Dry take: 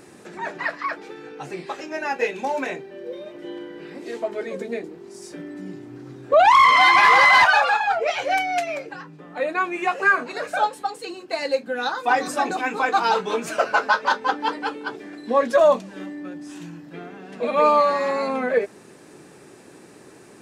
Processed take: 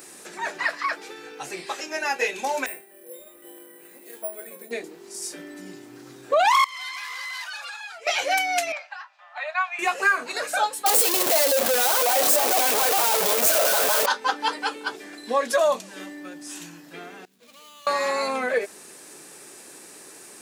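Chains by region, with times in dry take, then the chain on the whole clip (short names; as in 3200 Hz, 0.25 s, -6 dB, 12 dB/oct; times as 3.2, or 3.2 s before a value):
2.66–4.71 air absorption 170 m + resonator 72 Hz, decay 0.32 s, harmonics odd, mix 80% + careless resampling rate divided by 4×, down none, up hold
6.64–8.07 passive tone stack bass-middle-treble 5-5-5 + compressor, threshold -34 dBFS + notch 790 Hz, Q 8.9
8.72–9.79 steep high-pass 620 Hz 96 dB/oct + air absorption 190 m
10.86–14.06 infinite clipping + bell 600 Hz +13.5 dB 0.91 oct
17.25–17.87 median filter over 25 samples + passive tone stack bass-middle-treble 6-0-2 + compressor 5:1, threshold -46 dBFS
whole clip: RIAA curve recording; compressor 2:1, threshold -19 dBFS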